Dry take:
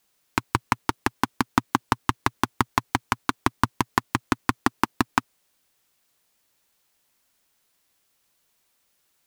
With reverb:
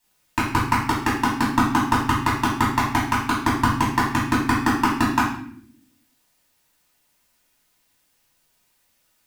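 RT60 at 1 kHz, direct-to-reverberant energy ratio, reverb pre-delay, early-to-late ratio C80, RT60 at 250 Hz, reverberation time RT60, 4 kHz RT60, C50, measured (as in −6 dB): 0.55 s, −8.0 dB, 3 ms, 7.5 dB, 1.1 s, 0.65 s, 0.50 s, 3.0 dB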